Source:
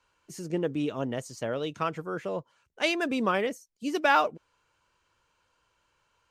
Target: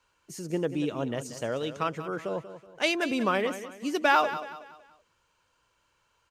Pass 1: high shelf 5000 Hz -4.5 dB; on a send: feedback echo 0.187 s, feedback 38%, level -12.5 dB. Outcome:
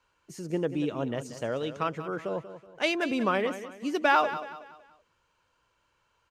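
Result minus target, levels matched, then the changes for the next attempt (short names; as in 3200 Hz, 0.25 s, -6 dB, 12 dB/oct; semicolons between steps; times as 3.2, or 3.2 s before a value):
8000 Hz band -4.5 dB
change: high shelf 5000 Hz +3 dB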